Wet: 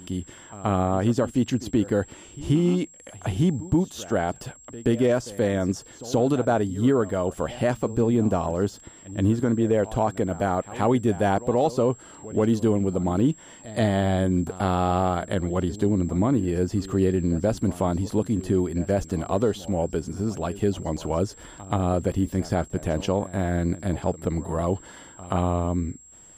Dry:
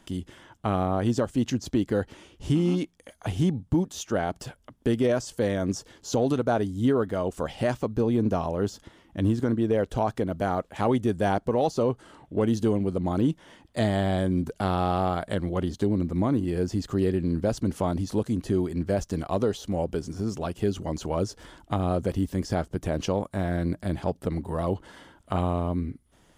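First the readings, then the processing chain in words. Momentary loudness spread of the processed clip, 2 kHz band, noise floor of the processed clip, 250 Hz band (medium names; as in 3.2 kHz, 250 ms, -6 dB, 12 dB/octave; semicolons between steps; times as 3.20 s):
8 LU, +2.0 dB, -48 dBFS, +2.5 dB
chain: dynamic bell 6.1 kHz, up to -5 dB, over -56 dBFS, Q 1.1; whistle 7.6 kHz -50 dBFS; pre-echo 129 ms -17.5 dB; trim +2.5 dB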